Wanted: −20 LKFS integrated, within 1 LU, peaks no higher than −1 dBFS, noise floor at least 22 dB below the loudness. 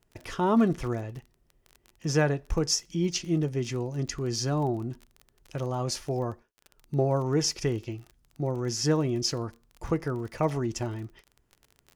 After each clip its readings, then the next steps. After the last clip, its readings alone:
crackle rate 29 per second; integrated loudness −29.0 LKFS; sample peak −12.0 dBFS; target loudness −20.0 LKFS
→ click removal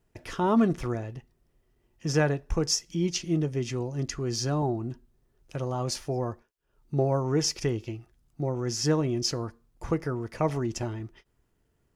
crackle rate 0 per second; integrated loudness −29.0 LKFS; sample peak −12.0 dBFS; target loudness −20.0 LKFS
→ level +9 dB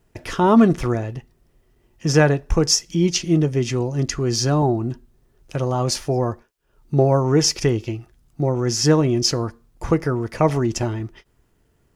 integrated loudness −20.0 LKFS; sample peak −3.0 dBFS; background noise floor −63 dBFS

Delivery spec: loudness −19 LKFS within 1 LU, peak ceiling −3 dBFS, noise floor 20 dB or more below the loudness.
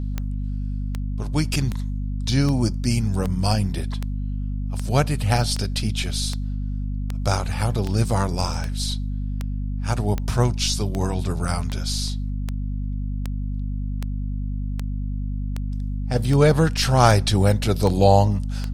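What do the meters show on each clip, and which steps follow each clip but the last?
number of clicks 25; mains hum 50 Hz; hum harmonics up to 250 Hz; level of the hum −24 dBFS; integrated loudness −23.5 LKFS; sample peak −2.0 dBFS; target loudness −19.0 LKFS
→ click removal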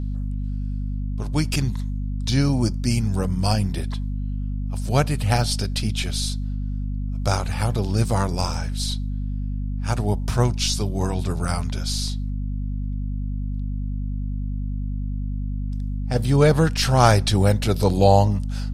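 number of clicks 0; mains hum 50 Hz; hum harmonics up to 250 Hz; level of the hum −24 dBFS
→ mains-hum notches 50/100/150/200/250 Hz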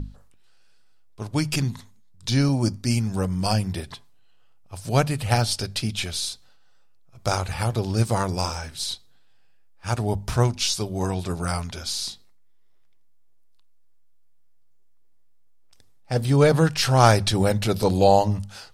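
mains hum none found; integrated loudness −23.5 LKFS; sample peak −2.5 dBFS; target loudness −19.0 LKFS
→ level +4.5 dB
brickwall limiter −3 dBFS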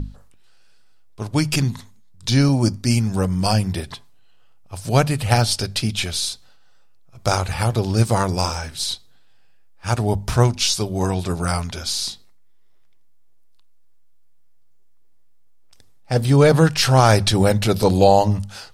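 integrated loudness −19.0 LKFS; sample peak −3.0 dBFS; background noise floor −46 dBFS

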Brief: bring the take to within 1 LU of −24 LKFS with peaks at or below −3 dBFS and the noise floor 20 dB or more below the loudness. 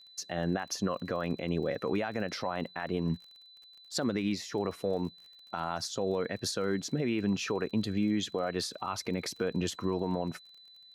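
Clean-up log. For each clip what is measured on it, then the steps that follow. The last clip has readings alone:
crackle rate 35 per second; interfering tone 4,000 Hz; level of the tone −53 dBFS; integrated loudness −33.0 LKFS; sample peak −20.5 dBFS; target loudness −24.0 LKFS
→ click removal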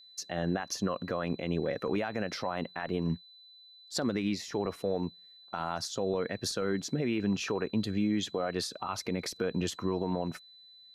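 crackle rate 0.091 per second; interfering tone 4,000 Hz; level of the tone −53 dBFS
→ notch filter 4,000 Hz, Q 30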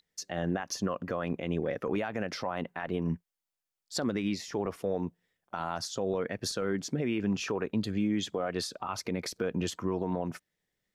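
interfering tone none found; integrated loudness −33.5 LKFS; sample peak −20.5 dBFS; target loudness −24.0 LKFS
→ level +9.5 dB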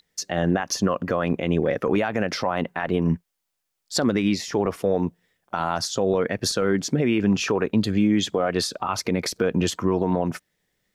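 integrated loudness −24.0 LKFS; sample peak −11.0 dBFS; background noise floor −79 dBFS

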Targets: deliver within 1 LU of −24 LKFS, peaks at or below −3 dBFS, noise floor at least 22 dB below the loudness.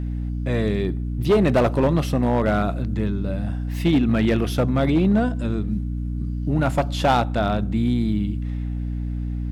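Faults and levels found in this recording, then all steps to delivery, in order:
share of clipped samples 1.4%; peaks flattened at −12.0 dBFS; mains hum 60 Hz; hum harmonics up to 300 Hz; level of the hum −24 dBFS; integrated loudness −22.0 LKFS; sample peak −12.0 dBFS; target loudness −24.0 LKFS
→ clipped peaks rebuilt −12 dBFS
mains-hum notches 60/120/180/240/300 Hz
level −2 dB

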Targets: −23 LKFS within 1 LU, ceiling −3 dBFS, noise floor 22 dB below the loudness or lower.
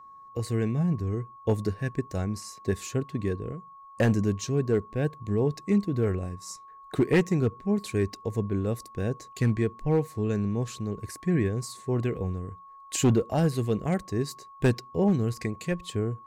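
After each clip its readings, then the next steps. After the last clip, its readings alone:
share of clipped samples 0.4%; peaks flattened at −15.5 dBFS; interfering tone 1,100 Hz; level of the tone −46 dBFS; integrated loudness −28.5 LKFS; sample peak −15.5 dBFS; target loudness −23.0 LKFS
→ clipped peaks rebuilt −15.5 dBFS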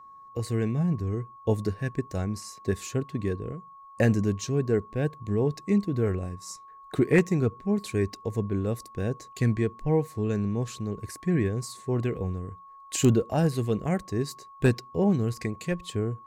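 share of clipped samples 0.0%; interfering tone 1,100 Hz; level of the tone −46 dBFS
→ notch filter 1,100 Hz, Q 30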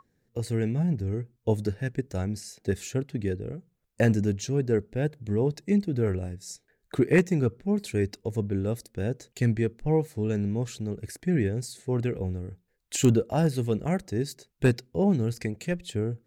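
interfering tone none found; integrated loudness −28.0 LKFS; sample peak −8.5 dBFS; target loudness −23.0 LKFS
→ level +5 dB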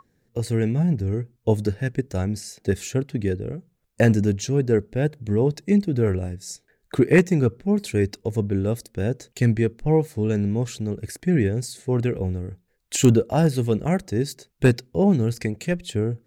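integrated loudness −23.0 LKFS; sample peak −3.5 dBFS; background noise floor −69 dBFS

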